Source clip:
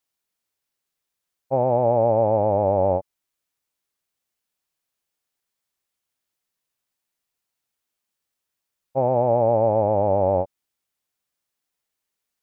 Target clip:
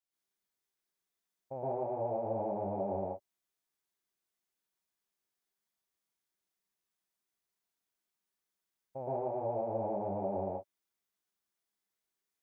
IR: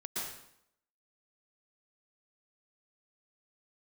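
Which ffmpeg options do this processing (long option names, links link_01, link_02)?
-filter_complex "[0:a]alimiter=limit=-19dB:level=0:latency=1:release=112[link_01];[1:a]atrim=start_sample=2205,afade=type=out:start_time=0.23:duration=0.01,atrim=end_sample=10584[link_02];[link_01][link_02]afir=irnorm=-1:irlink=0,volume=-7.5dB"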